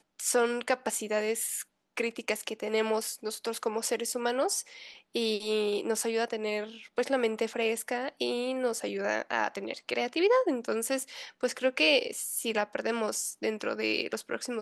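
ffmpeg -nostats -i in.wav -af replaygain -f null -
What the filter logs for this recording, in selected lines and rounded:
track_gain = +10.7 dB
track_peak = 0.166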